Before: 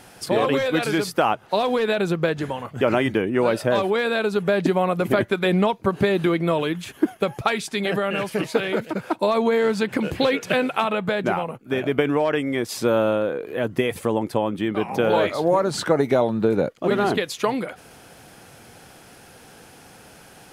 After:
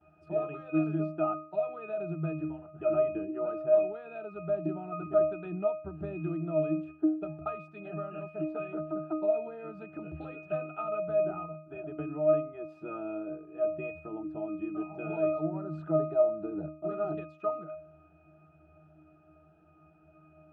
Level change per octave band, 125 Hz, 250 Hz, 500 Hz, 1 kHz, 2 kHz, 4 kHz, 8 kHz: -10.5 dB, -11.0 dB, -9.0 dB, -15.5 dB, -21.5 dB, under -35 dB, under -40 dB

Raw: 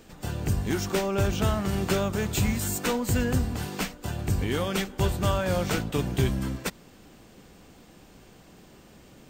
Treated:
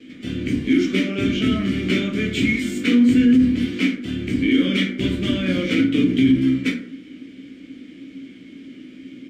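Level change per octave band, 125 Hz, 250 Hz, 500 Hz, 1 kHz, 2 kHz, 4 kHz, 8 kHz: -0.5 dB, +13.5 dB, +1.5 dB, -7.5 dB, +8.5 dB, +7.5 dB, no reading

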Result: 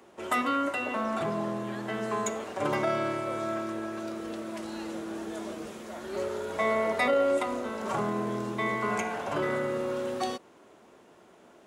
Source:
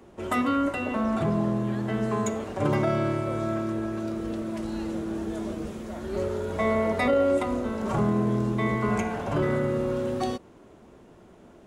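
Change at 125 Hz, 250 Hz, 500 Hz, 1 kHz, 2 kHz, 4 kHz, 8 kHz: -12.0 dB, -7.0 dB, -2.5 dB, 0.0 dB, +1.0 dB, +1.5 dB, +1.5 dB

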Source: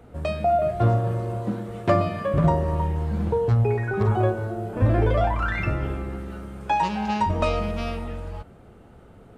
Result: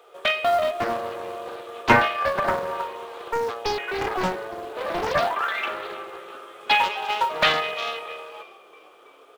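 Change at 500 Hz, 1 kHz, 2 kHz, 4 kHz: -1.5 dB, +2.5 dB, +8.5 dB, +13.5 dB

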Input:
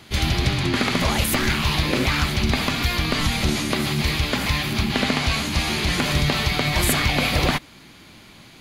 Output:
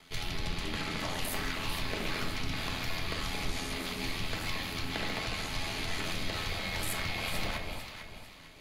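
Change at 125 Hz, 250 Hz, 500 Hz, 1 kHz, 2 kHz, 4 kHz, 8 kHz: -17.0 dB, -16.5 dB, -13.0 dB, -12.5 dB, -12.5 dB, -12.5 dB, -13.0 dB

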